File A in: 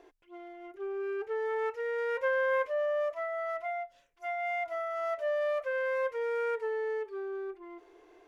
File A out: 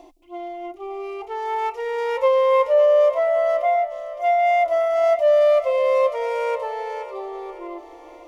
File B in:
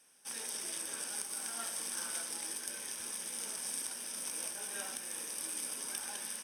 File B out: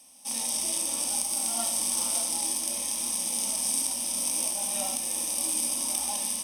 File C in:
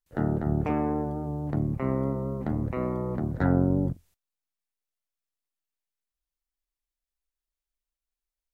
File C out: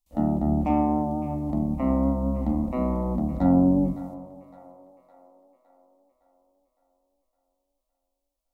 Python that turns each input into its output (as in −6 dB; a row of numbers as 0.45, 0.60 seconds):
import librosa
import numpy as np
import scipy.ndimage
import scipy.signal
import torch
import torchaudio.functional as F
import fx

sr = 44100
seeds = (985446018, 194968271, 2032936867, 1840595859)

y = fx.peak_eq(x, sr, hz=64.0, db=13.0, octaves=0.24)
y = fx.fixed_phaser(y, sr, hz=420.0, stages=6)
y = fx.hpss(y, sr, part='harmonic', gain_db=9)
y = fx.echo_split(y, sr, split_hz=460.0, low_ms=165, high_ms=561, feedback_pct=52, wet_db=-14.5)
y = y * 10.0 ** (-9 / 20.0) / np.max(np.abs(y))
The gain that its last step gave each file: +8.0, +6.5, −1.5 decibels